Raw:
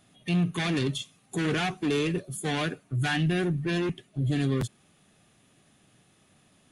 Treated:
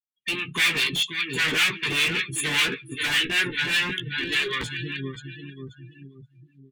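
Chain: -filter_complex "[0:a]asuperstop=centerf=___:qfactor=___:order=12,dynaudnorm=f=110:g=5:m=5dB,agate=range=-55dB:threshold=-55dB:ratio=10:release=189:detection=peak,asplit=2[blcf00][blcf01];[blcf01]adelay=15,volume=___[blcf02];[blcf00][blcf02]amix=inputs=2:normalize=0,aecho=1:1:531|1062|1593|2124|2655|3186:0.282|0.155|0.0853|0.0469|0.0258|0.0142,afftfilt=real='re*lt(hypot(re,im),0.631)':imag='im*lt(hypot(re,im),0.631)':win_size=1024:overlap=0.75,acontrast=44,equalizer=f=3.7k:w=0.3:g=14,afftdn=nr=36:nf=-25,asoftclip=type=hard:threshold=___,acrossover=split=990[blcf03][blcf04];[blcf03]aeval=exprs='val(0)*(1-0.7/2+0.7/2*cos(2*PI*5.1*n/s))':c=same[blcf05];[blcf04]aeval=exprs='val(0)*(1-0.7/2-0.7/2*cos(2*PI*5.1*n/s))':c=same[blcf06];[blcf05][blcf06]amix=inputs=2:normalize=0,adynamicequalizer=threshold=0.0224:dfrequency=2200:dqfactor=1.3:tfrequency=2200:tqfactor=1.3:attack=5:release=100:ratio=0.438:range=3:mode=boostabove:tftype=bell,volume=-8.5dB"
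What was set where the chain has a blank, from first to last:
660, 1.9, -5.5dB, -12dB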